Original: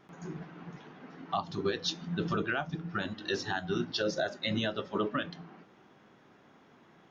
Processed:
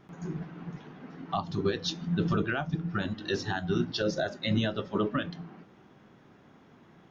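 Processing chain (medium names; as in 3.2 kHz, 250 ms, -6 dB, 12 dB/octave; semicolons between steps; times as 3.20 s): bass shelf 220 Hz +10 dB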